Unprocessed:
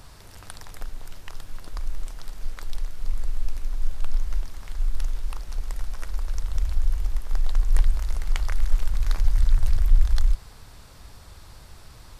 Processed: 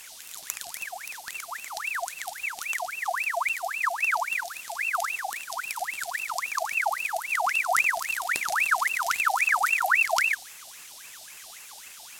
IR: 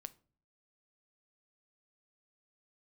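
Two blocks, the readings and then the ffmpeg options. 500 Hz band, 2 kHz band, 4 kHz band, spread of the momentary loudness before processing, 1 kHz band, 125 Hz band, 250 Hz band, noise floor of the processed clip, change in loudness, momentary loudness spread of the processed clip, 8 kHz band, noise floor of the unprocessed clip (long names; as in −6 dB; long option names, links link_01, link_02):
+14.0 dB, +21.5 dB, +7.5 dB, 23 LU, +19.5 dB, below −35 dB, below −10 dB, −46 dBFS, +3.5 dB, 20 LU, can't be measured, −47 dBFS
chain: -af "aexciter=amount=10.2:drive=3.8:freq=3100,aeval=exprs='val(0)*sin(2*PI*1700*n/s+1700*0.6/3.7*sin(2*PI*3.7*n/s))':channel_layout=same,volume=-6.5dB"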